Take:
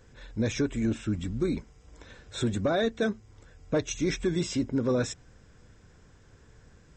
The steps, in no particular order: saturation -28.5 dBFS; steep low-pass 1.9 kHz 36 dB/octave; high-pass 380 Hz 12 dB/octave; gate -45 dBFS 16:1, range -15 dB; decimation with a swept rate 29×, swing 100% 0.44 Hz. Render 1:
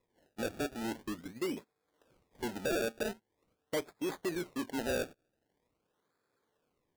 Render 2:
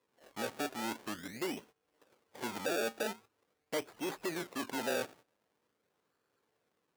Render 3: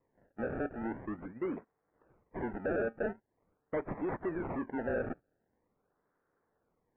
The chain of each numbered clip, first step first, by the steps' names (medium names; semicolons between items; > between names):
high-pass > saturation > steep low-pass > decimation with a swept rate > gate; gate > saturation > steep low-pass > decimation with a swept rate > high-pass; high-pass > saturation > gate > decimation with a swept rate > steep low-pass